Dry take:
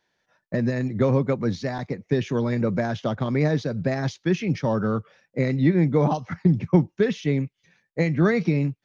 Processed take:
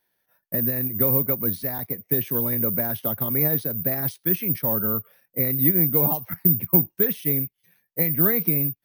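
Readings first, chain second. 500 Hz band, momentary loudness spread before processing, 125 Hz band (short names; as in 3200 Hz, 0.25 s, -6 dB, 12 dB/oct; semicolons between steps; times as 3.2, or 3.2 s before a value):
-5.0 dB, 7 LU, -5.0 dB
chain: careless resampling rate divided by 3×, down filtered, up zero stuff; gain -5 dB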